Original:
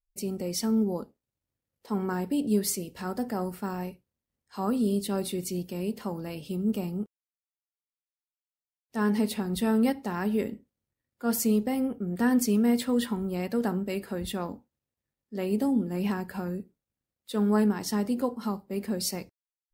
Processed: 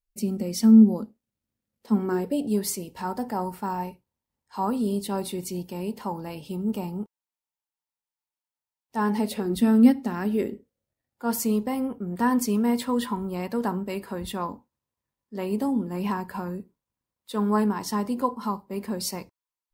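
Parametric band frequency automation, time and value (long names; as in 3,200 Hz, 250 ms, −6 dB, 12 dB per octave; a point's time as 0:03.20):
parametric band +12.5 dB 0.35 octaves
0:01.94 220 Hz
0:02.52 910 Hz
0:09.18 910 Hz
0:09.61 250 Hz
0:10.17 250 Hz
0:11.32 1,000 Hz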